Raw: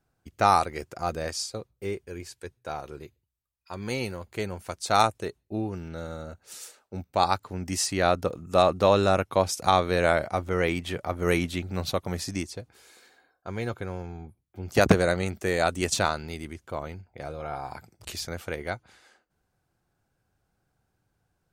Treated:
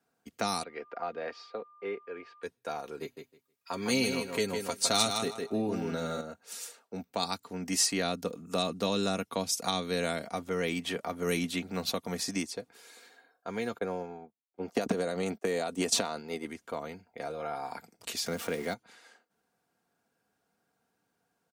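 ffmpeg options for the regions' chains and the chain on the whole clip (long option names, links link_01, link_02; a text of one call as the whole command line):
ffmpeg -i in.wav -filter_complex "[0:a]asettb=1/sr,asplit=3[link_01][link_02][link_03];[link_01]atrim=end=0.634[link_04];[link_02]atrim=start=0.63:end=2.43,asetpts=PTS-STARTPTS,afade=type=in:duration=0.004:curve=qsin,afade=type=out:start_time=1.796:duration=0.004:curve=qsin,lowpass=frequency=4000:width=0.5412,lowpass=frequency=4000:width=1.3066,acrossover=split=320 2800:gain=0.224 1 0.224[link_05][link_06][link_07];[link_05][link_06][link_07]amix=inputs=3:normalize=0,aeval=exprs='val(0)+0.00141*sin(2*PI*1200*n/s)':channel_layout=same[link_08];[link_03]atrim=start=2.426[link_09];[link_04][link_08]acrossfade=duration=0.004:curve1=hsin:curve2=qsin[link_10];[link_10][link_09]acrossfade=duration=0.004:curve1=qsin:curve2=hsin,asettb=1/sr,asplit=3[link_11][link_12][link_13];[link_11]atrim=end=3.014[link_14];[link_12]atrim=start=3.01:end=6.21,asetpts=PTS-STARTPTS,afade=type=in:duration=0.004:curve=qsin,afade=type=out:start_time=3.196:duration=0.004:curve=qsin,acontrast=37,aecho=1:1:7.4:0.42,atrim=end_sample=141120,aecho=1:1:157|314|471:0.447|0.0715|0.0114,atrim=end_sample=141120[link_15];[link_13]atrim=start=6.206[link_16];[link_14][link_15]acrossfade=duration=0.004:curve1=hsin:curve2=qsin[link_17];[link_17][link_16]acrossfade=duration=0.004:curve1=qsin:curve2=hsin,asettb=1/sr,asplit=3[link_18][link_19][link_20];[link_18]atrim=end=13.784[link_21];[link_19]atrim=start=13.78:end=16.46,asetpts=PTS-STARTPTS,afade=type=in:duration=0.004:curve=qsin,afade=type=out:start_time=2.676:duration=0.004:curve=qsin,agate=range=-33dB:threshold=-32dB:ratio=3:release=100:detection=peak,equalizer=frequency=640:width=0.47:gain=12,acompressor=threshold=-19dB:ratio=5:attack=3.2:release=140:knee=1:detection=peak[link_22];[link_20]atrim=start=16.456[link_23];[link_21][link_22]acrossfade=duration=0.004:curve1=hsin:curve2=qsin[link_24];[link_24][link_23]acrossfade=duration=0.004:curve1=qsin:curve2=hsin,asettb=1/sr,asplit=3[link_25][link_26][link_27];[link_25]atrim=end=18.264[link_28];[link_26]atrim=start=18.26:end=18.74,asetpts=PTS-STARTPTS,afade=type=in:duration=0.004:curve=qsin,afade=type=out:start_time=0.476:duration=0.004:curve=qsin,aeval=exprs='val(0)+0.5*0.0106*sgn(val(0))':channel_layout=same,highpass=99,lowshelf=frequency=460:gain=6.5[link_29];[link_27]atrim=start=18.736[link_30];[link_28][link_29]acrossfade=duration=0.004:curve1=hsin:curve2=qsin[link_31];[link_31][link_30]acrossfade=duration=0.004:curve1=qsin:curve2=hsin,highpass=210,aecho=1:1:4.3:0.45,acrossover=split=290|3000[link_32][link_33][link_34];[link_33]acompressor=threshold=-33dB:ratio=6[link_35];[link_32][link_35][link_34]amix=inputs=3:normalize=0" out.wav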